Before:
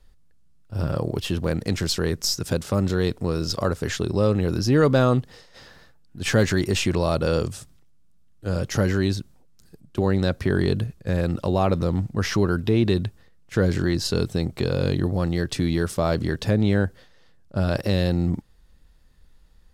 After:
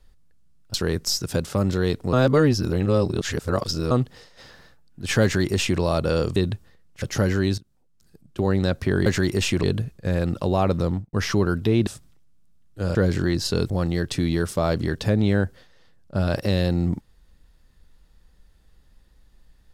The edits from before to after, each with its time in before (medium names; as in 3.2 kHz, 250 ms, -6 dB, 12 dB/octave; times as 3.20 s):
0.74–1.91 s: delete
3.30–5.08 s: reverse
6.40–6.97 s: copy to 10.65 s
7.53–8.61 s: swap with 12.89–13.55 s
9.17–10.10 s: fade in, from -20 dB
11.89–12.15 s: studio fade out
14.30–15.11 s: delete